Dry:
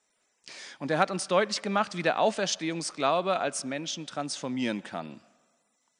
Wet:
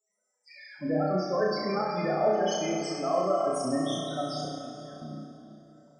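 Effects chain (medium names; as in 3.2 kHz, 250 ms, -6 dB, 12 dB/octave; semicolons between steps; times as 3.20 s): 0.68–1.45 s: low-pass 4.9 kHz -> 7.6 kHz 12 dB/octave; 3.37–3.81 s: bass shelf 330 Hz +6.5 dB; peak limiter -18 dBFS, peak gain reduction 10 dB; loudest bins only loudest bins 8; 4.45–5.02 s: inverted gate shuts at -37 dBFS, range -25 dB; flutter echo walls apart 5.6 m, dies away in 0.74 s; plate-style reverb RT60 3.5 s, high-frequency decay 0.75×, DRR 2 dB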